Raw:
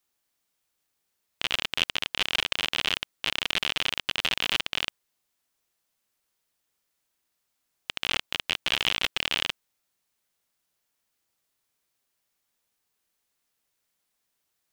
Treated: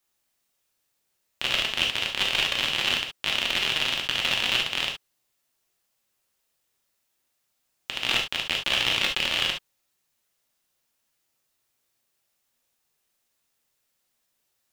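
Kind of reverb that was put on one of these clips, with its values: gated-style reverb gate 90 ms flat, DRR 0.5 dB

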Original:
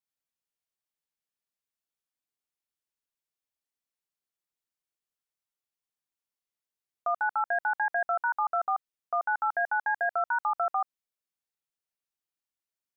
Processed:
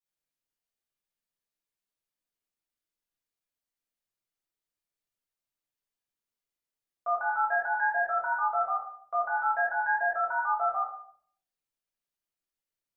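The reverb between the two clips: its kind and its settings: simulated room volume 77 m³, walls mixed, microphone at 1.8 m; trim -8 dB

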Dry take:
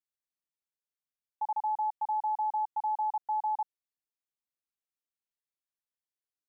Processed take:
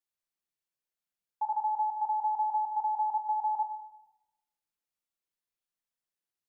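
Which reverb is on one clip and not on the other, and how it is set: simulated room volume 520 m³, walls mixed, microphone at 0.85 m

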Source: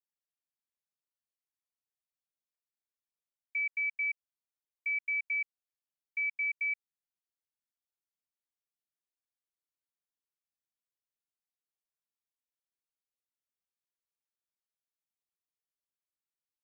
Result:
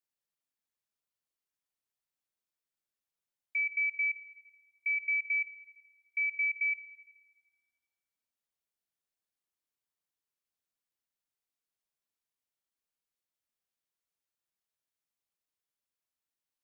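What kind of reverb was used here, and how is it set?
spring tank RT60 1.4 s, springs 36/48 ms, chirp 80 ms, DRR 11.5 dB; trim +1.5 dB

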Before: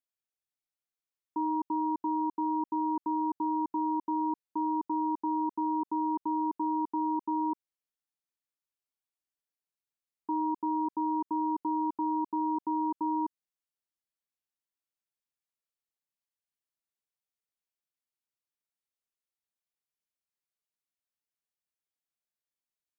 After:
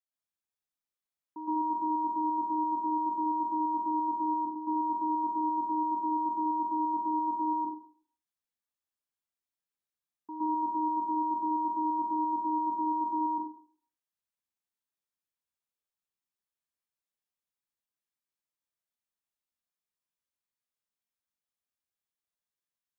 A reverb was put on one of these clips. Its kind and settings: plate-style reverb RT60 0.52 s, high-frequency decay 0.75×, pre-delay 105 ms, DRR -8 dB; trim -10 dB

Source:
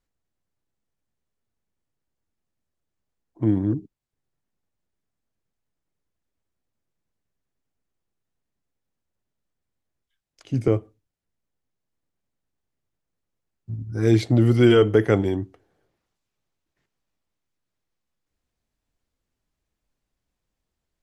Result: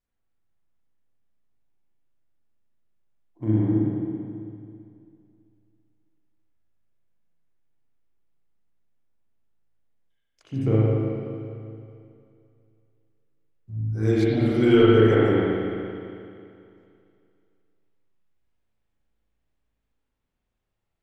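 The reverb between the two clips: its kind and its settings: spring tank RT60 2.5 s, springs 37/55 ms, chirp 65 ms, DRR -8.5 dB; trim -8.5 dB

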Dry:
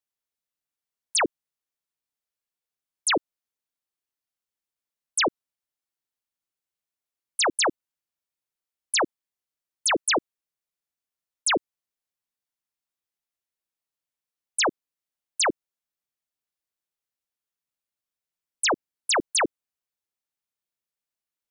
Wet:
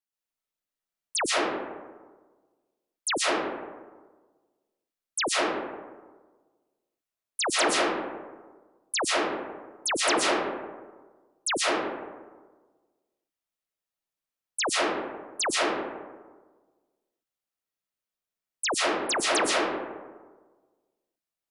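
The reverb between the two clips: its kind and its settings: algorithmic reverb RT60 1.4 s, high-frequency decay 0.4×, pre-delay 90 ms, DRR -5 dB; trim -5.5 dB

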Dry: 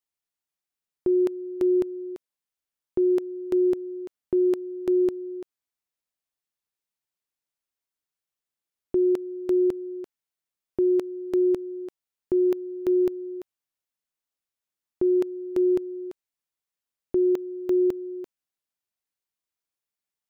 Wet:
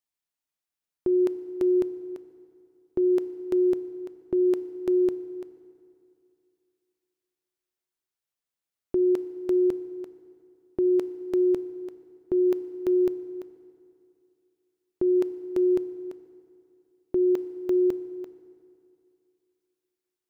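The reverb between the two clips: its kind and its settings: FDN reverb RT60 2.6 s, high-frequency decay 0.65×, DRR 14 dB; trim -1 dB

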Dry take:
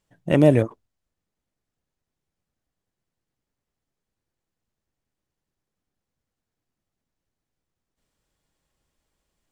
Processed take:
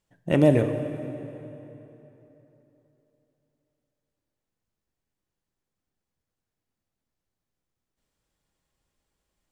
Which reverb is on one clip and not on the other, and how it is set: plate-style reverb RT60 3.4 s, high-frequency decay 0.75×, DRR 7 dB; trim -3 dB

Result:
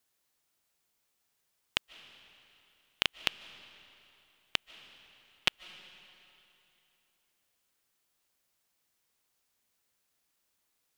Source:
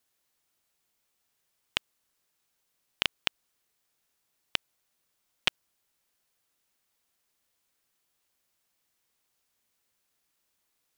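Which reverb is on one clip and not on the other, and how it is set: algorithmic reverb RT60 3 s, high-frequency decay 0.9×, pre-delay 110 ms, DRR 16 dB; trim -1 dB

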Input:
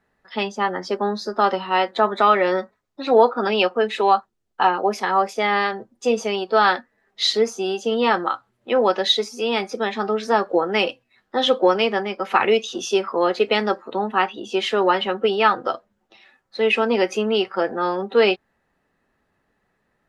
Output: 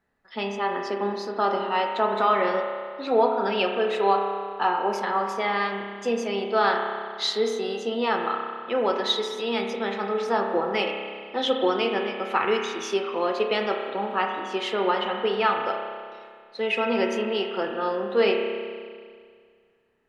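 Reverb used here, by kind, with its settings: spring tank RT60 2 s, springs 30 ms, chirp 65 ms, DRR 2.5 dB; trim -6.5 dB

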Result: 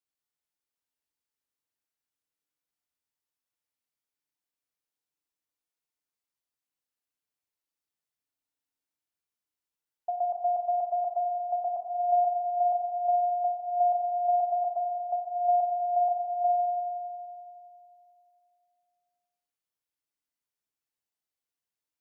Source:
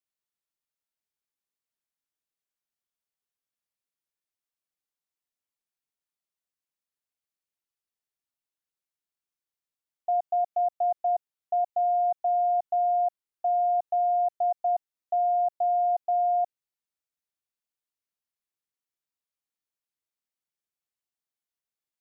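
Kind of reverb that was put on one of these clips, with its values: FDN reverb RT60 2.6 s, high-frequency decay 0.65×, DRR 1 dB; trim -2.5 dB

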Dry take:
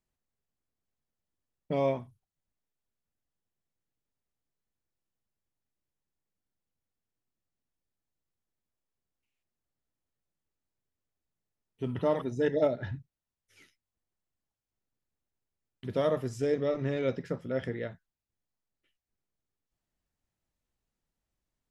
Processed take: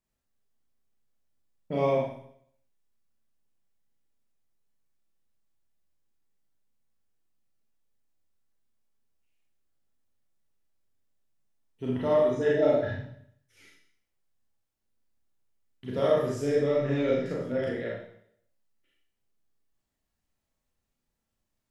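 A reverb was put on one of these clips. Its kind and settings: Schroeder reverb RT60 0.66 s, combs from 28 ms, DRR -5 dB; trim -2.5 dB

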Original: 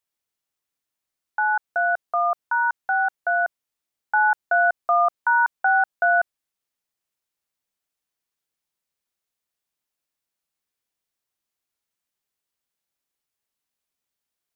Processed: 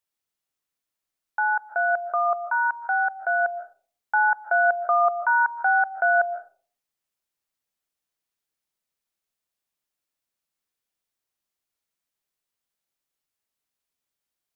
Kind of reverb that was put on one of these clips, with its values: algorithmic reverb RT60 0.43 s, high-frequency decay 0.35×, pre-delay 100 ms, DRR 10 dB; trim -1.5 dB

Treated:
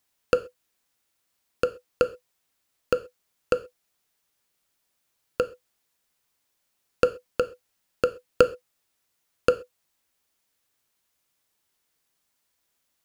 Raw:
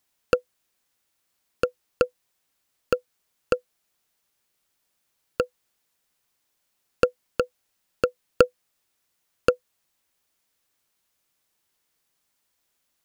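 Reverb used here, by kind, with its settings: gated-style reverb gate 150 ms falling, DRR 11.5 dB; trim -1 dB

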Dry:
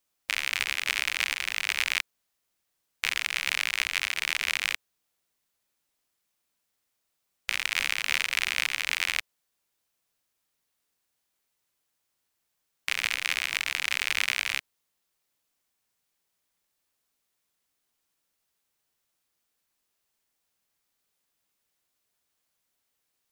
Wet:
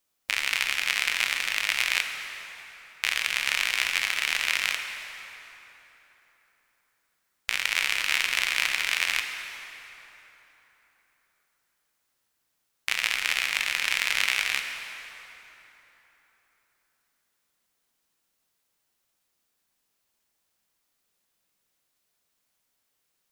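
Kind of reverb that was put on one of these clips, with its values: plate-style reverb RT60 3.8 s, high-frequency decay 0.65×, DRR 4.5 dB; trim +1.5 dB

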